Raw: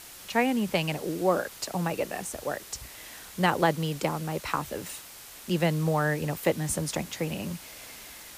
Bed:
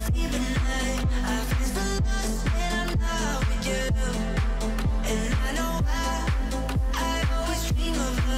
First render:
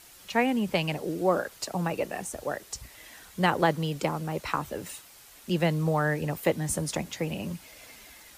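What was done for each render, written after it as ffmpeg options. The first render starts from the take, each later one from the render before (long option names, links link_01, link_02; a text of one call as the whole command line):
ffmpeg -i in.wav -af "afftdn=noise_reduction=7:noise_floor=-46" out.wav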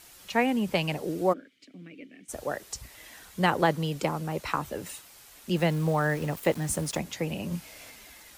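ffmpeg -i in.wav -filter_complex "[0:a]asplit=3[link_01][link_02][link_03];[link_01]afade=type=out:start_time=1.32:duration=0.02[link_04];[link_02]asplit=3[link_05][link_06][link_07];[link_05]bandpass=frequency=270:width_type=q:width=8,volume=0dB[link_08];[link_06]bandpass=frequency=2290:width_type=q:width=8,volume=-6dB[link_09];[link_07]bandpass=frequency=3010:width_type=q:width=8,volume=-9dB[link_10];[link_08][link_09][link_10]amix=inputs=3:normalize=0,afade=type=in:start_time=1.32:duration=0.02,afade=type=out:start_time=2.28:duration=0.02[link_11];[link_03]afade=type=in:start_time=2.28:duration=0.02[link_12];[link_04][link_11][link_12]amix=inputs=3:normalize=0,asettb=1/sr,asplit=3[link_13][link_14][link_15];[link_13]atrim=end=5.564[link_16];[link_14]atrim=start=5.56:end=6.99,asetpts=PTS-STARTPTS,afade=type=in:duration=0.004:curve=qsin,afade=type=out:start_time=1.426:duration=0.004:curve=qsin,aeval=exprs='val(0)*gte(abs(val(0)),0.0106)':channel_layout=same[link_17];[link_15]atrim=start=6.986[link_18];[link_16][link_17]acrossfade=duration=0.004:curve1=hsin:curve2=qsin[link_19];[link_19][link_18]acrossfade=duration=0.004:curve1=qsin:curve2=hsin,asettb=1/sr,asplit=3[link_20][link_21][link_22];[link_20]atrim=end=7.494[link_23];[link_21]atrim=start=7.49:end=7.9,asetpts=PTS-STARTPTS,afade=type=in:duration=0.004:curve=qsin,afade=type=out:start_time=0.406:duration=0.004:curve=qsin,asplit=2[link_24][link_25];[link_25]adelay=29,volume=-2dB[link_26];[link_24][link_26]amix=inputs=2:normalize=0,atrim=end_sample=18081[link_27];[link_22]atrim=start=7.896[link_28];[link_23][link_27]acrossfade=duration=0.004:curve1=hsin:curve2=qsin[link_29];[link_29][link_28]acrossfade=duration=0.004:curve1=qsin:curve2=hsin" out.wav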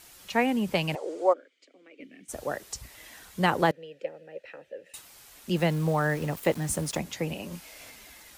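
ffmpeg -i in.wav -filter_complex "[0:a]asettb=1/sr,asplit=3[link_01][link_02][link_03];[link_01]atrim=end=0.954[link_04];[link_02]atrim=start=0.95:end=2,asetpts=PTS-STARTPTS,afade=type=in:duration=0.004:curve=qsin,afade=type=out:start_time=1.046:duration=0.004:curve=qsin,highpass=frequency=400:width=0.5412,highpass=frequency=400:width=1.3066,equalizer=frequency=520:width_type=q:width=4:gain=5,equalizer=frequency=890:width_type=q:width=4:gain=4,equalizer=frequency=1700:width_type=q:width=4:gain=-4,equalizer=frequency=2700:width_type=q:width=4:gain=-5,equalizer=frequency=3900:width_type=q:width=4:gain=-5,equalizer=frequency=5500:width_type=q:width=4:gain=-5,lowpass=frequency=7800:width=0.5412,lowpass=frequency=7800:width=1.3066[link_05];[link_03]atrim=start=1.996[link_06];[link_04][link_05]acrossfade=duration=0.004:curve1=hsin:curve2=qsin[link_07];[link_07][link_06]acrossfade=duration=0.004:curve1=qsin:curve2=hsin,asettb=1/sr,asplit=3[link_08][link_09][link_10];[link_08]atrim=end=3.714[link_11];[link_09]atrim=start=3.71:end=4.94,asetpts=PTS-STARTPTS,afade=type=in:duration=0.004:curve=qsin,afade=type=out:start_time=1.226:duration=0.004:curve=qsin,asplit=3[link_12][link_13][link_14];[link_12]bandpass=frequency=530:width_type=q:width=8,volume=0dB[link_15];[link_13]bandpass=frequency=1840:width_type=q:width=8,volume=-6dB[link_16];[link_14]bandpass=frequency=2480:width_type=q:width=8,volume=-9dB[link_17];[link_15][link_16][link_17]amix=inputs=3:normalize=0[link_18];[link_10]atrim=start=4.936[link_19];[link_11][link_18]acrossfade=duration=0.004:curve1=hsin:curve2=qsin[link_20];[link_20][link_19]acrossfade=duration=0.004:curve1=qsin:curve2=hsin,asettb=1/sr,asplit=3[link_21][link_22][link_23];[link_21]atrim=end=7.334[link_24];[link_22]atrim=start=7.33:end=7.8,asetpts=PTS-STARTPTS,afade=type=in:duration=0.004:curve=qsin,afade=type=out:start_time=0.466:duration=0.004:curve=qsin,equalizer=frequency=130:width=1:gain=-11[link_25];[link_23]atrim=start=7.796[link_26];[link_24][link_25]acrossfade=duration=0.004:curve1=hsin:curve2=qsin[link_27];[link_27][link_26]acrossfade=duration=0.004:curve1=qsin:curve2=hsin" out.wav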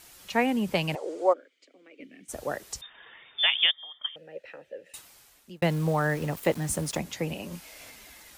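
ffmpeg -i in.wav -filter_complex "[0:a]asettb=1/sr,asplit=3[link_01][link_02][link_03];[link_01]atrim=end=2.814[link_04];[link_02]atrim=start=2.81:end=4.16,asetpts=PTS-STARTPTS,afade=type=in:duration=0.004:curve=qsin,afade=type=out:start_time=1.346:duration=0.004:curve=qsin,lowpass=frequency=3100:width_type=q:width=0.5098,lowpass=frequency=3100:width_type=q:width=0.6013,lowpass=frequency=3100:width_type=q:width=0.9,lowpass=frequency=3100:width_type=q:width=2.563,afreqshift=-3700[link_05];[link_03]atrim=start=4.156[link_06];[link_04][link_05]acrossfade=duration=0.004:curve1=hsin:curve2=qsin[link_07];[link_07][link_06]acrossfade=duration=0.004:curve1=qsin:curve2=hsin,asplit=2[link_08][link_09];[link_08]atrim=end=5.62,asetpts=PTS-STARTPTS,afade=type=out:start_time=4.96:duration=0.66[link_10];[link_09]atrim=start=5.62,asetpts=PTS-STARTPTS,afade=type=in:duration=0.004:curve=hsin[link_11];[link_10][link_11]concat=n=2:v=0:a=1" out.wav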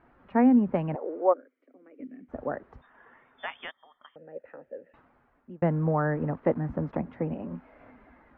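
ffmpeg -i in.wav -af "lowpass=frequency=1500:width=0.5412,lowpass=frequency=1500:width=1.3066,equalizer=frequency=250:width_type=o:width=0.24:gain=11" out.wav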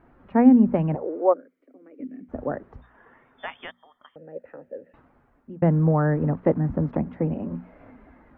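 ffmpeg -i in.wav -af "lowshelf=frequency=460:gain=8.5,bandreject=frequency=60:width_type=h:width=6,bandreject=frequency=120:width_type=h:width=6,bandreject=frequency=180:width_type=h:width=6,bandreject=frequency=240:width_type=h:width=6" out.wav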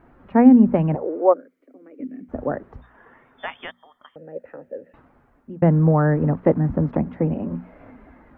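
ffmpeg -i in.wav -af "volume=3.5dB,alimiter=limit=-2dB:level=0:latency=1" out.wav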